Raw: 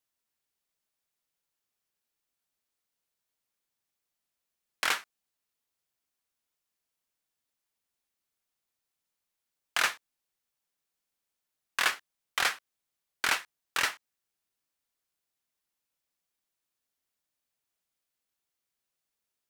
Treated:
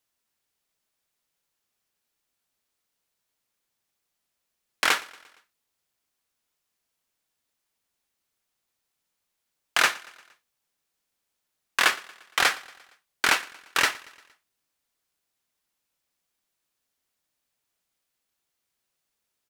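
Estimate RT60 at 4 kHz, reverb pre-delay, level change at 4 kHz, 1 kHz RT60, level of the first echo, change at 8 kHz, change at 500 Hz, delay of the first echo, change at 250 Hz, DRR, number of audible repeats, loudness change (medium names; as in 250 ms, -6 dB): no reverb, no reverb, +6.0 dB, no reverb, -22.0 dB, +5.5 dB, +8.0 dB, 116 ms, +9.5 dB, no reverb, 3, +6.0 dB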